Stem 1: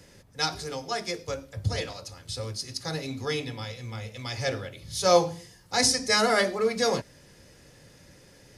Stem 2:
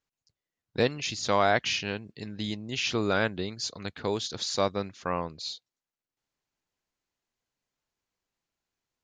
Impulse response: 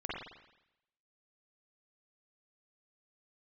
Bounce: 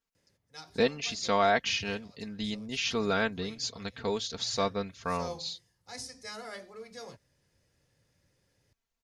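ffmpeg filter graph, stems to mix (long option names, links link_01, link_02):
-filter_complex "[0:a]highpass=70,adelay=150,volume=-19.5dB[link_01];[1:a]aecho=1:1:4.4:0.67,volume=-3dB[link_02];[link_01][link_02]amix=inputs=2:normalize=0,asubboost=boost=2.5:cutoff=120"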